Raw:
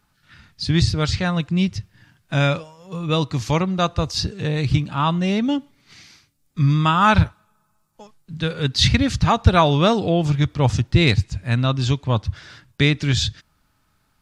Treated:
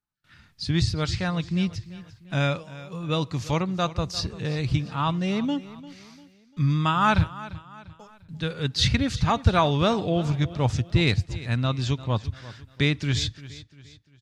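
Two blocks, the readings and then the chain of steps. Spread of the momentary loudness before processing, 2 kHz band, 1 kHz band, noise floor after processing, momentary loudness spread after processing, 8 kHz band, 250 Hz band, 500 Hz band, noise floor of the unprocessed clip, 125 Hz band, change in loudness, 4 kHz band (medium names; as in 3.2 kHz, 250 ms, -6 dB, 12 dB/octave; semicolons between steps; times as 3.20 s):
11 LU, -5.5 dB, -5.5 dB, -58 dBFS, 20 LU, -5.5 dB, -5.5 dB, -5.5 dB, -66 dBFS, -5.5 dB, -5.5 dB, -5.5 dB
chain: gate with hold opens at -49 dBFS; on a send: feedback delay 347 ms, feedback 41%, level -17 dB; on the sum: trim -5.5 dB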